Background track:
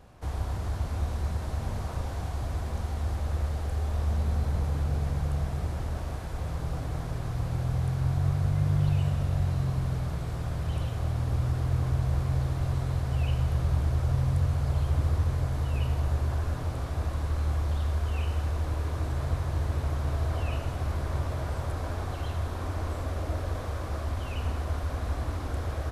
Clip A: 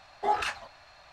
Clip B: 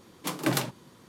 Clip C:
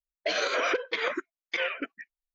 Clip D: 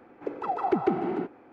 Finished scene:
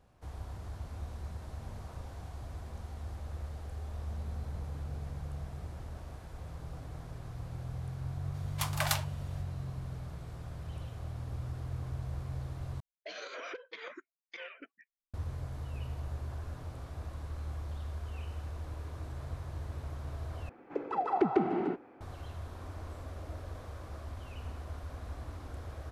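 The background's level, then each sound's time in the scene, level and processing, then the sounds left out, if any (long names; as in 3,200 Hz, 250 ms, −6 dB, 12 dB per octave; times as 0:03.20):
background track −11.5 dB
0:08.34: mix in B −1.5 dB + Butterworth high-pass 610 Hz 96 dB per octave
0:12.80: overwrite with C −16 dB
0:20.49: overwrite with D −2.5 dB
not used: A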